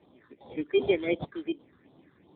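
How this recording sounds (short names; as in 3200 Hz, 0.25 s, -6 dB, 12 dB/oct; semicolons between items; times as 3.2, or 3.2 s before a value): aliases and images of a low sample rate 2800 Hz, jitter 0%; phasing stages 6, 2.7 Hz, lowest notch 680–2000 Hz; AMR-NB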